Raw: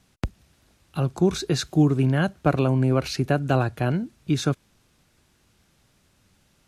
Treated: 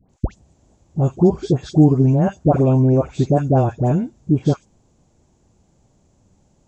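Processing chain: nonlinear frequency compression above 2600 Hz 1.5:1; band shelf 2500 Hz -15.5 dB 2.4 oct; dispersion highs, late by 97 ms, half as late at 1200 Hz; gain +6.5 dB

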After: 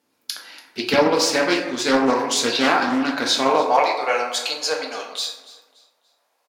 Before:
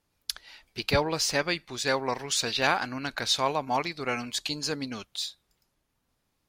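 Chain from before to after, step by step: bell 150 Hz -4 dB 1.4 oct; in parallel at -2 dB: limiter -16.5 dBFS, peak gain reduction 8.5 dB; on the sum: high-pass sweep 250 Hz -> 620 Hz, 3.32–3.89; on a send: feedback echo 0.287 s, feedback 33%, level -19 dB; on the sum: plate-style reverb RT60 0.96 s, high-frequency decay 0.45×, DRR -0.5 dB; Doppler distortion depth 0.28 ms

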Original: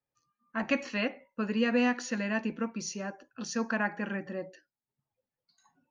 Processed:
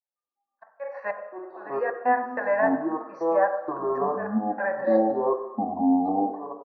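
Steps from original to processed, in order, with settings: doubler 38 ms -11 dB; AGC gain up to 15.5 dB; tempo 0.89×; auto swell 0.458 s; compressor, threshold -18 dBFS, peak gain reduction 9 dB; step gate "xx.x.xx..x" 95 bpm -24 dB; elliptic band-pass 550–1700 Hz, stop band 40 dB; gate -57 dBFS, range -16 dB; echoes that change speed 0.129 s, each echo -7 st, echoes 2; reverb RT60 1.0 s, pre-delay 3 ms, DRR 6 dB; gain -1 dB

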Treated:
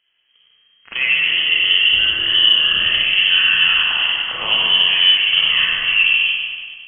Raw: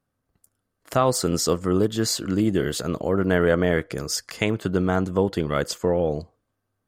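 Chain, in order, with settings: in parallel at +3 dB: negative-ratio compressor -26 dBFS; on the sum: limiter -9 dBFS, peak gain reduction 6 dB; air absorption 170 m; on a send: thinning echo 97 ms, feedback 64%, high-pass 450 Hz, level -7 dB; on the sum: Schroeder reverb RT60 1.6 s, combs from 33 ms, DRR -5 dB; inverted band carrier 3200 Hz; gain -1.5 dB

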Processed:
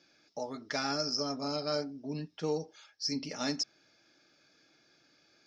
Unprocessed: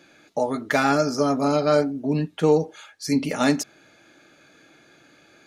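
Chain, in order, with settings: ladder low-pass 5500 Hz, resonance 85%; gain -2 dB

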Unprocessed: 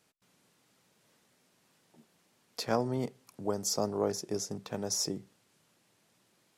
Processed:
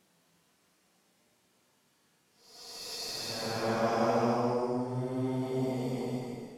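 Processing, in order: added harmonics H 6 -24 dB, 8 -42 dB, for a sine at -13.5 dBFS; Paulstretch 6.4×, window 0.25 s, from 2.11

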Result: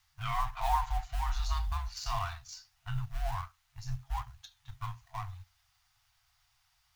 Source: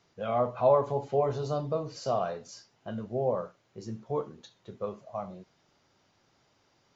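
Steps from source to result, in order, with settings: G.711 law mismatch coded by A; bell 690 Hz -9.5 dB 1.3 oct; frequency shift -92 Hz; FFT band-reject 130–660 Hz; gain +7.5 dB

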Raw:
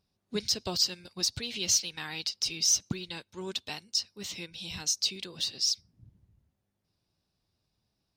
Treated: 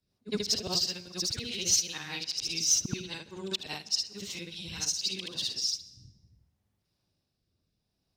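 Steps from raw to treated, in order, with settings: short-time reversal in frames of 0.158 s; rotary speaker horn 5 Hz, later 0.6 Hz, at 4.43; on a send: reverb RT60 1.0 s, pre-delay 0.116 s, DRR 19 dB; on the sum: gain +5.5 dB

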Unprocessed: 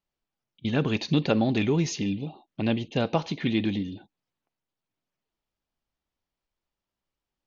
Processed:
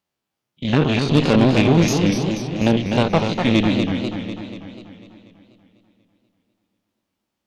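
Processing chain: stepped spectrum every 50 ms; HPF 95 Hz; added harmonics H 6 -17 dB, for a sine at -11.5 dBFS; on a send: analogue delay 0.5 s, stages 4096, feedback 33%, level -20.5 dB; on the sum: warbling echo 0.245 s, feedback 58%, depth 172 cents, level -6 dB; gain +8.5 dB

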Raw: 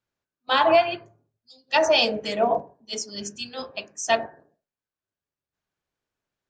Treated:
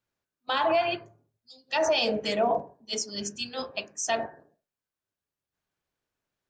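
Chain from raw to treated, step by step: limiter -16.5 dBFS, peak gain reduction 8 dB

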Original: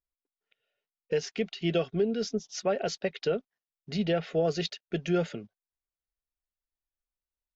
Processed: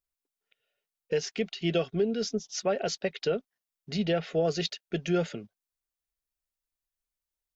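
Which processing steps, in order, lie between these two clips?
high shelf 5100 Hz +5.5 dB

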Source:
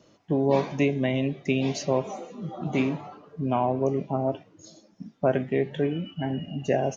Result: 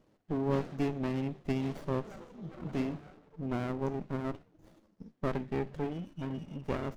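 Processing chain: running maximum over 33 samples; gain -8 dB

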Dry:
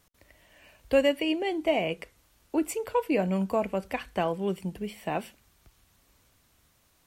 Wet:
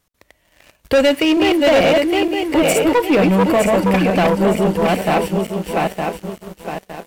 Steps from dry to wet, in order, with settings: regenerating reverse delay 0.456 s, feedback 57%, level -2.5 dB; sample leveller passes 3; gain +4 dB

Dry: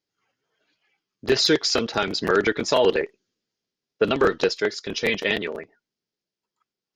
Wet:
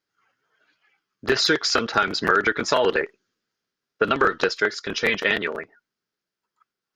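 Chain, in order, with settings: bell 1400 Hz +11 dB 0.95 oct; compressor 3:1, threshold -16 dBFS, peak gain reduction 6 dB

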